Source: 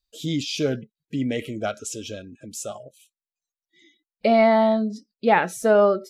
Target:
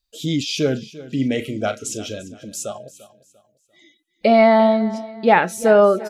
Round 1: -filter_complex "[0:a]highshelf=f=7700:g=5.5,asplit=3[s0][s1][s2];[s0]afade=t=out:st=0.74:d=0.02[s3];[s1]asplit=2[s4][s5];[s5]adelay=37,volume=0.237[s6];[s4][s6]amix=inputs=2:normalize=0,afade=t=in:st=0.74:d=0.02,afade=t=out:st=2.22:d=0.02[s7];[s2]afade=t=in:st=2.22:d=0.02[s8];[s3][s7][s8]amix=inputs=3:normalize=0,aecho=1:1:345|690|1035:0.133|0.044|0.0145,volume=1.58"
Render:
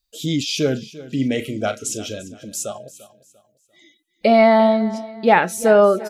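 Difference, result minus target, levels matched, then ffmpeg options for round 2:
8 kHz band +2.5 dB
-filter_complex "[0:a]asplit=3[s0][s1][s2];[s0]afade=t=out:st=0.74:d=0.02[s3];[s1]asplit=2[s4][s5];[s5]adelay=37,volume=0.237[s6];[s4][s6]amix=inputs=2:normalize=0,afade=t=in:st=0.74:d=0.02,afade=t=out:st=2.22:d=0.02[s7];[s2]afade=t=in:st=2.22:d=0.02[s8];[s3][s7][s8]amix=inputs=3:normalize=0,aecho=1:1:345|690|1035:0.133|0.044|0.0145,volume=1.58"

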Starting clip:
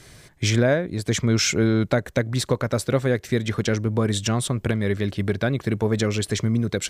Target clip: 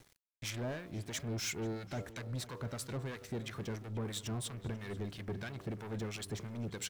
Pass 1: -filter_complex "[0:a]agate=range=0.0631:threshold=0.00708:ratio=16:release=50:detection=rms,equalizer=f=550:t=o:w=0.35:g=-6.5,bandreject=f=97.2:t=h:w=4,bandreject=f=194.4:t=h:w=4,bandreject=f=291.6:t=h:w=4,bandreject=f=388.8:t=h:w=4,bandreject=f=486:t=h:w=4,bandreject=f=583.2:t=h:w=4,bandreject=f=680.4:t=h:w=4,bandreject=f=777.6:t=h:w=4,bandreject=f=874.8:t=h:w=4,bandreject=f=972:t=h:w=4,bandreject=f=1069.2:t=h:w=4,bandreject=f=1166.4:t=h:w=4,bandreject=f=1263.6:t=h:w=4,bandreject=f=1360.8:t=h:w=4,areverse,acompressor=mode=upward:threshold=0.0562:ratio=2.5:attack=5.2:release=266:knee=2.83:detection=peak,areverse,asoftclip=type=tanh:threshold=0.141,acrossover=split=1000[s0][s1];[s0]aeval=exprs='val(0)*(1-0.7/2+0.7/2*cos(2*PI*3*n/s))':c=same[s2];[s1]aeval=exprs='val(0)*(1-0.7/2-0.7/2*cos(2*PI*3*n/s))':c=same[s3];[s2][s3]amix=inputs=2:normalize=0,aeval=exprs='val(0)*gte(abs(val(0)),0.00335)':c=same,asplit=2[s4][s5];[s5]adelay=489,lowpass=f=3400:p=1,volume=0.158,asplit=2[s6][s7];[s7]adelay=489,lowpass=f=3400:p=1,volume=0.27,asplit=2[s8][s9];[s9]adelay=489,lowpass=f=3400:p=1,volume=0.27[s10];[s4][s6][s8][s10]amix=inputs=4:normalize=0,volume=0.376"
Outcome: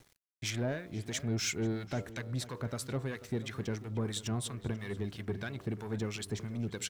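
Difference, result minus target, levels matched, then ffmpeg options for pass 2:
saturation: distortion -8 dB
-filter_complex "[0:a]agate=range=0.0631:threshold=0.00708:ratio=16:release=50:detection=rms,equalizer=f=550:t=o:w=0.35:g=-6.5,bandreject=f=97.2:t=h:w=4,bandreject=f=194.4:t=h:w=4,bandreject=f=291.6:t=h:w=4,bandreject=f=388.8:t=h:w=4,bandreject=f=486:t=h:w=4,bandreject=f=583.2:t=h:w=4,bandreject=f=680.4:t=h:w=4,bandreject=f=777.6:t=h:w=4,bandreject=f=874.8:t=h:w=4,bandreject=f=972:t=h:w=4,bandreject=f=1069.2:t=h:w=4,bandreject=f=1166.4:t=h:w=4,bandreject=f=1263.6:t=h:w=4,bandreject=f=1360.8:t=h:w=4,areverse,acompressor=mode=upward:threshold=0.0562:ratio=2.5:attack=5.2:release=266:knee=2.83:detection=peak,areverse,asoftclip=type=tanh:threshold=0.0562,acrossover=split=1000[s0][s1];[s0]aeval=exprs='val(0)*(1-0.7/2+0.7/2*cos(2*PI*3*n/s))':c=same[s2];[s1]aeval=exprs='val(0)*(1-0.7/2-0.7/2*cos(2*PI*3*n/s))':c=same[s3];[s2][s3]amix=inputs=2:normalize=0,aeval=exprs='val(0)*gte(abs(val(0)),0.00335)':c=same,asplit=2[s4][s5];[s5]adelay=489,lowpass=f=3400:p=1,volume=0.158,asplit=2[s6][s7];[s7]adelay=489,lowpass=f=3400:p=1,volume=0.27,asplit=2[s8][s9];[s9]adelay=489,lowpass=f=3400:p=1,volume=0.27[s10];[s4][s6][s8][s10]amix=inputs=4:normalize=0,volume=0.376"

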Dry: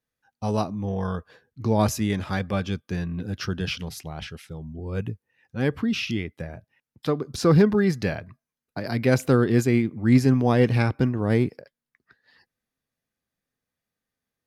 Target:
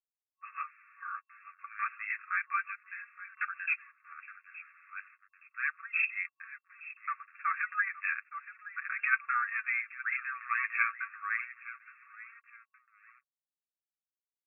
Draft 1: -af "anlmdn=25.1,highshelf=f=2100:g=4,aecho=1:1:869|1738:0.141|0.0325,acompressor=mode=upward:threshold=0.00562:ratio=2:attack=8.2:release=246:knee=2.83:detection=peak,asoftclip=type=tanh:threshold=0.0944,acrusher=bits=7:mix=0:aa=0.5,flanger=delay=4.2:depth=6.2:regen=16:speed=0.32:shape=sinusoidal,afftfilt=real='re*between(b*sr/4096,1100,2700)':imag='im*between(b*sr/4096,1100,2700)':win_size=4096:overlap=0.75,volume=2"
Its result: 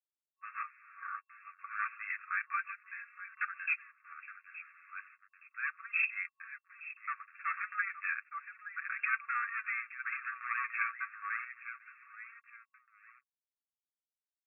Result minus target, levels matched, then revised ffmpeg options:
saturation: distortion +12 dB
-af "anlmdn=25.1,highshelf=f=2100:g=4,aecho=1:1:869|1738:0.141|0.0325,acompressor=mode=upward:threshold=0.00562:ratio=2:attack=8.2:release=246:knee=2.83:detection=peak,asoftclip=type=tanh:threshold=0.335,acrusher=bits=7:mix=0:aa=0.5,flanger=delay=4.2:depth=6.2:regen=16:speed=0.32:shape=sinusoidal,afftfilt=real='re*between(b*sr/4096,1100,2700)':imag='im*between(b*sr/4096,1100,2700)':win_size=4096:overlap=0.75,volume=2"

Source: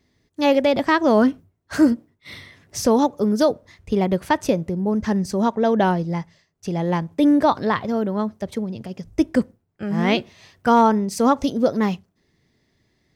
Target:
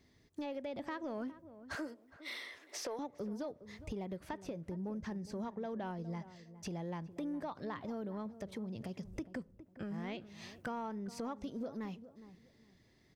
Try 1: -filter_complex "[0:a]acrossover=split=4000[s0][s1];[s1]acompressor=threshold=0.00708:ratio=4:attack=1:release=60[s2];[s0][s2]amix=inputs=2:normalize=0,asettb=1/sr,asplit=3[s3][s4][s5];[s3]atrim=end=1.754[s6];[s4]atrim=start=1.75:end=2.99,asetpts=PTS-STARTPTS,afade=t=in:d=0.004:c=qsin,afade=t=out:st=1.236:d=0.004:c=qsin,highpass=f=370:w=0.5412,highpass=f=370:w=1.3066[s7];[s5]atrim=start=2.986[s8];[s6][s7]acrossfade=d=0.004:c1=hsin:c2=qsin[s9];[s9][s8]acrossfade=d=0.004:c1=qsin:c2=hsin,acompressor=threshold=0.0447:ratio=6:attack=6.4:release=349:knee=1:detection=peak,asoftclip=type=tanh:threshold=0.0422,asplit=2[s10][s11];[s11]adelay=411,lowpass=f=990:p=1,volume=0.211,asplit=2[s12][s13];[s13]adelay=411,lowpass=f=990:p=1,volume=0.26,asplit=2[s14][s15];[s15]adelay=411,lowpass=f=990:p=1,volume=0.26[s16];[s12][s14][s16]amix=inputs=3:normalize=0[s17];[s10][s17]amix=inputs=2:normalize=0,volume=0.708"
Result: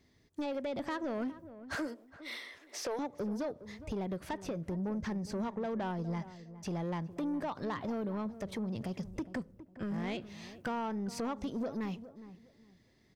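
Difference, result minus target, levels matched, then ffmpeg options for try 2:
compression: peak gain reduction -7 dB
-filter_complex "[0:a]acrossover=split=4000[s0][s1];[s1]acompressor=threshold=0.00708:ratio=4:attack=1:release=60[s2];[s0][s2]amix=inputs=2:normalize=0,asettb=1/sr,asplit=3[s3][s4][s5];[s3]atrim=end=1.754[s6];[s4]atrim=start=1.75:end=2.99,asetpts=PTS-STARTPTS,afade=t=in:d=0.004:c=qsin,afade=t=out:st=1.236:d=0.004:c=qsin,highpass=f=370:w=0.5412,highpass=f=370:w=1.3066[s7];[s5]atrim=start=2.986[s8];[s6][s7]acrossfade=d=0.004:c1=hsin:c2=qsin[s9];[s9][s8]acrossfade=d=0.004:c1=qsin:c2=hsin,acompressor=threshold=0.0168:ratio=6:attack=6.4:release=349:knee=1:detection=peak,asoftclip=type=tanh:threshold=0.0422,asplit=2[s10][s11];[s11]adelay=411,lowpass=f=990:p=1,volume=0.211,asplit=2[s12][s13];[s13]adelay=411,lowpass=f=990:p=1,volume=0.26,asplit=2[s14][s15];[s15]adelay=411,lowpass=f=990:p=1,volume=0.26[s16];[s12][s14][s16]amix=inputs=3:normalize=0[s17];[s10][s17]amix=inputs=2:normalize=0,volume=0.708"

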